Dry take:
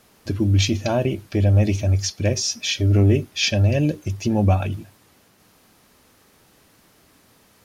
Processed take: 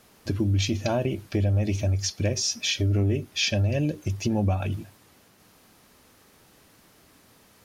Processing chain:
downward compressor 3 to 1, threshold −21 dBFS, peak gain reduction 7.5 dB
level −1 dB

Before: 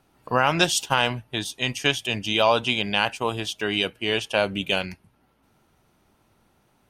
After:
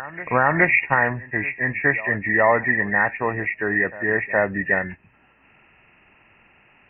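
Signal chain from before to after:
hearing-aid frequency compression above 1,600 Hz 4 to 1
backwards echo 418 ms −18.5 dB
one half of a high-frequency compander encoder only
level +2 dB

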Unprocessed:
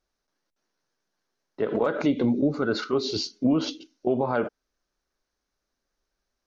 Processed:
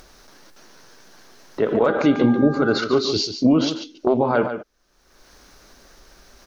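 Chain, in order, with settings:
in parallel at 0 dB: upward compression, threshold −25 dBFS
on the sum: single-tap delay 144 ms −9.5 dB
0:01.86–0:02.77: hum with harmonics 400 Hz, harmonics 4, −33 dBFS −1 dB per octave
0:03.70–0:04.18: highs frequency-modulated by the lows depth 0.28 ms

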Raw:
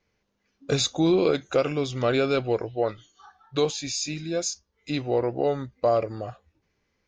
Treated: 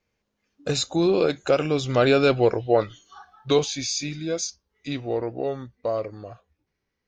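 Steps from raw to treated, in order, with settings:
source passing by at 0:02.67, 14 m/s, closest 14 metres
level +6 dB

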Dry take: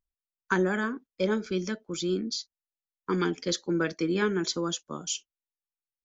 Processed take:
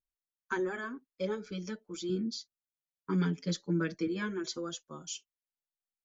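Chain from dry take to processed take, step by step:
0:02.09–0:04.07: parametric band 150 Hz +12 dB 1.1 octaves
barber-pole flanger 6.2 ms +0.48 Hz
level −5.5 dB

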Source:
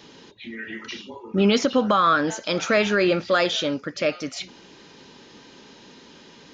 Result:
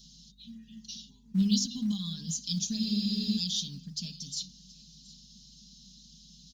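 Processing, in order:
inverse Chebyshev band-stop filter 330–2,300 Hz, stop band 40 dB
low-shelf EQ 200 Hz −4.5 dB
mains-hum notches 50/100/150/200/250 Hz
dynamic equaliser 310 Hz, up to +5 dB, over −53 dBFS, Q 1.1
on a send: single-tap delay 723 ms −21 dB
on the sum: mains hum 50 Hz, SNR 25 dB
in parallel at −11.5 dB: floating-point word with a short mantissa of 2 bits
on the sum: comb filter 4.9 ms, depth 87%
frozen spectrum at 0:02.82, 0.55 s
level −3.5 dB

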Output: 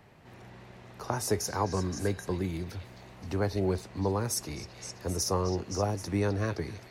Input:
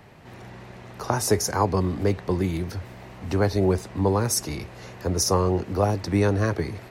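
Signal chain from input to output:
0:01.63–0:02.31: hollow resonant body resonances 1,600/3,900 Hz, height 16 dB
on a send: echo through a band-pass that steps 261 ms, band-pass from 3,400 Hz, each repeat 0.7 octaves, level −5 dB
on the sum: level −7.5 dB

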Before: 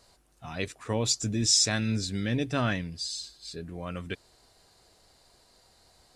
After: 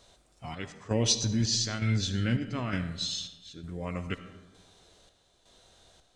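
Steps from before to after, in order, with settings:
square-wave tremolo 1.1 Hz, depth 60%, duty 60%
comb and all-pass reverb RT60 1.3 s, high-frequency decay 0.55×, pre-delay 25 ms, DRR 10.5 dB
formants moved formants −3 semitones
level +1.5 dB

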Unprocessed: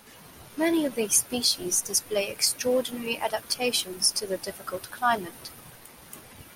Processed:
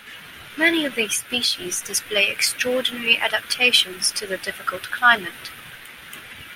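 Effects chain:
0:01.01–0:01.81: downward compressor 2.5 to 1, threshold −25 dBFS, peak gain reduction 6 dB
flat-topped bell 2,200 Hz +14 dB
level +1.5 dB

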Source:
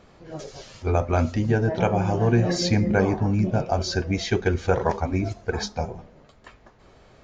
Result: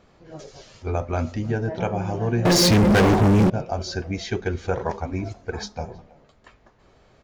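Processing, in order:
far-end echo of a speakerphone 320 ms, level −22 dB
0:02.45–0:03.50: leveller curve on the samples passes 5
level −3.5 dB

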